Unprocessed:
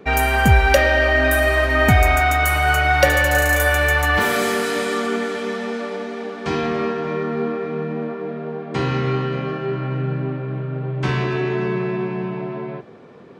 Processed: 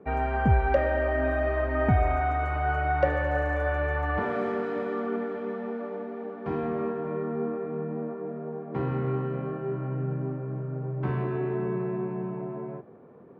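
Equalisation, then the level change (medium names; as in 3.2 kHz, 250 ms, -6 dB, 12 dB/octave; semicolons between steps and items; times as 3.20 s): high-pass 51 Hz; low-pass 1.1 kHz 12 dB/octave; -7.0 dB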